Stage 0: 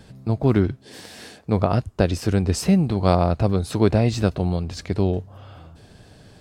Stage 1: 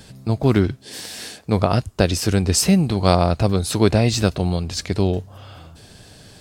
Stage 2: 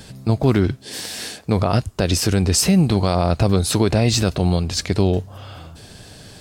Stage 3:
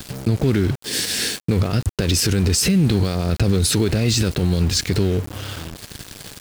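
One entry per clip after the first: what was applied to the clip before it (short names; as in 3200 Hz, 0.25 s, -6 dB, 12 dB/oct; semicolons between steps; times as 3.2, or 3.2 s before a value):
high shelf 2700 Hz +10.5 dB; gain +1.5 dB
limiter -10.5 dBFS, peak gain reduction 9 dB; gain +3.5 dB
limiter -17.5 dBFS, peak gain reduction 10.5 dB; band shelf 830 Hz -9.5 dB 1.2 oct; sample gate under -36.5 dBFS; gain +8 dB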